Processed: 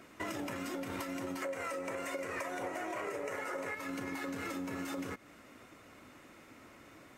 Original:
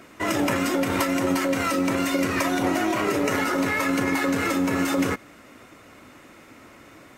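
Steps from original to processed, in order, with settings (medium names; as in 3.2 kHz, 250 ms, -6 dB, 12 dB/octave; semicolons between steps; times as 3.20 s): 1.42–3.75 s: graphic EQ 250/500/1000/2000/4000/8000 Hz -6/+12/+4/+8/-4/+7 dB; compression 10:1, threshold -28 dBFS, peak gain reduction 16 dB; trim -8 dB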